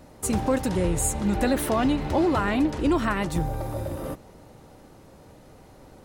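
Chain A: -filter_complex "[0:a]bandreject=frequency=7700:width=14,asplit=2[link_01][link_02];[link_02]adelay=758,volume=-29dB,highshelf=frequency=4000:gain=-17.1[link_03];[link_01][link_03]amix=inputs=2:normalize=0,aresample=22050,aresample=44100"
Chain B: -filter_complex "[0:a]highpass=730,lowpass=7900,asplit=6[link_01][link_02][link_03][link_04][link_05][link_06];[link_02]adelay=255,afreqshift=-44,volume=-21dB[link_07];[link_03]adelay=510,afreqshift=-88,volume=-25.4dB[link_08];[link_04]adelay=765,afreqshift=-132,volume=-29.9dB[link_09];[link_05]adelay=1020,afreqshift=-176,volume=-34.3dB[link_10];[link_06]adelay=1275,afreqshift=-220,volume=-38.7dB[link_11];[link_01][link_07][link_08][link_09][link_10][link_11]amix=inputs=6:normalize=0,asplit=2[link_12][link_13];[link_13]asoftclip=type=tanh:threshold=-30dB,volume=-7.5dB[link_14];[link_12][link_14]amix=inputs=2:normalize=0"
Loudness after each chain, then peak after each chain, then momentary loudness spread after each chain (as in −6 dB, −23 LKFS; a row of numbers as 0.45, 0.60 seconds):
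−25.0, −30.0 LKFS; −13.0, −14.5 dBFS; 9, 10 LU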